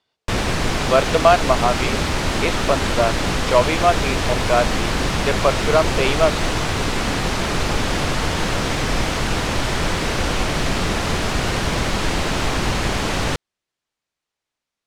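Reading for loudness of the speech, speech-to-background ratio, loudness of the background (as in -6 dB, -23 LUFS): -20.0 LUFS, 1.5 dB, -21.5 LUFS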